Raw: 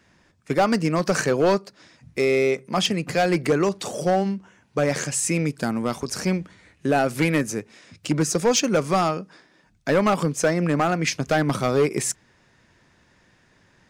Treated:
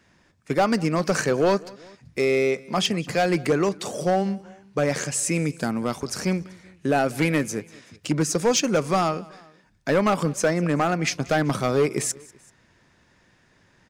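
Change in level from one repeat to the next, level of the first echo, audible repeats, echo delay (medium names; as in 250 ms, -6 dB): -4.5 dB, -23.0 dB, 2, 192 ms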